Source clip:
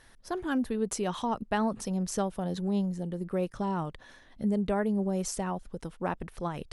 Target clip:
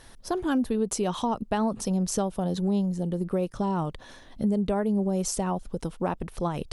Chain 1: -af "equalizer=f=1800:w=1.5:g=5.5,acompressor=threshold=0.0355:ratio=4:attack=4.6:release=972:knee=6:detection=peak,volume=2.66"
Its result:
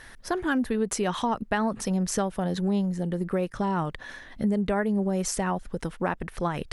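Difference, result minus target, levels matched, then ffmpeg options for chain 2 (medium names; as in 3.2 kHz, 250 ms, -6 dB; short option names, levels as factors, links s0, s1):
2 kHz band +8.5 dB
-af "equalizer=f=1800:w=1.5:g=-6,acompressor=threshold=0.0355:ratio=4:attack=4.6:release=972:knee=6:detection=peak,volume=2.66"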